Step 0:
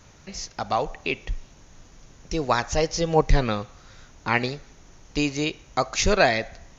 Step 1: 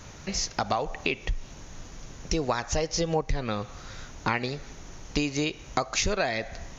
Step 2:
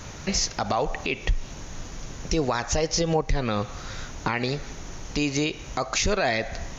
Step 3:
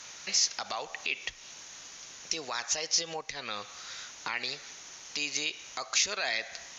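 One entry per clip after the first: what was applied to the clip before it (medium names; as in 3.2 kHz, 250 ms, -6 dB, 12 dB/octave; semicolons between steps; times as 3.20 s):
compression 8:1, threshold -30 dBFS, peak gain reduction 18.5 dB; trim +6.5 dB
peak limiter -19.5 dBFS, peak gain reduction 9.5 dB; trim +6 dB
band-pass filter 5 kHz, Q 0.57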